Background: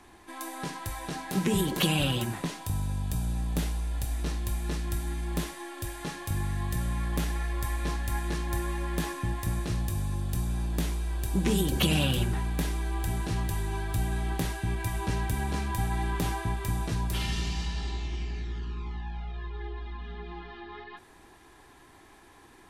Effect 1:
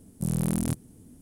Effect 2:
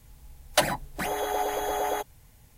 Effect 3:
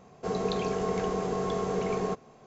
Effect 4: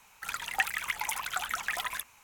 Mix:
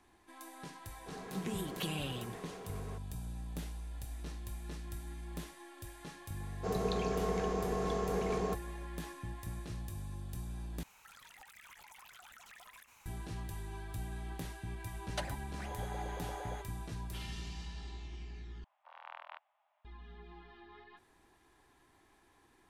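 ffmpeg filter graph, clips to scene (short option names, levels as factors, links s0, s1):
-filter_complex "[3:a]asplit=2[s0][s1];[0:a]volume=0.237[s2];[s0]volume=42.2,asoftclip=hard,volume=0.0237[s3];[4:a]acompressor=threshold=0.00447:ratio=8:attack=0.29:release=36:knee=1:detection=rms[s4];[2:a]lowpass=8400[s5];[1:a]highpass=f=530:t=q:w=0.5412,highpass=f=530:t=q:w=1.307,lowpass=f=2800:t=q:w=0.5176,lowpass=f=2800:t=q:w=0.7071,lowpass=f=2800:t=q:w=1.932,afreqshift=360[s6];[s2]asplit=3[s7][s8][s9];[s7]atrim=end=10.834[s10];[s4]atrim=end=2.23,asetpts=PTS-STARTPTS,volume=0.668[s11];[s8]atrim=start=13.056:end=18.644[s12];[s6]atrim=end=1.21,asetpts=PTS-STARTPTS,volume=0.447[s13];[s9]atrim=start=19.846[s14];[s3]atrim=end=2.46,asetpts=PTS-STARTPTS,volume=0.2,afade=t=in:d=0.004:c=hsin,afade=t=out:st=2.456:d=0.004:c=hsin,adelay=830[s15];[s1]atrim=end=2.46,asetpts=PTS-STARTPTS,volume=0.562,afade=t=in:d=0.004:c=hsin,afade=t=out:st=2.456:d=0.004:c=hsin,adelay=6400[s16];[s5]atrim=end=2.57,asetpts=PTS-STARTPTS,volume=0.141,afade=t=in:d=0.004:c=hsin,afade=t=out:st=2.566:d=0.004:c=hsin,adelay=643860S[s17];[s10][s11]acrossfade=d=0.004:c1=hsin:c2=hsin[s18];[s18][s12]acrossfade=d=0.004:c1=hsin:c2=hsin[s19];[s19][s13]acrossfade=d=0.004:c1=hsin:c2=hsin[s20];[s20][s14]acrossfade=d=0.004:c1=hsin:c2=hsin[s21];[s21][s15][s16][s17]amix=inputs=4:normalize=0"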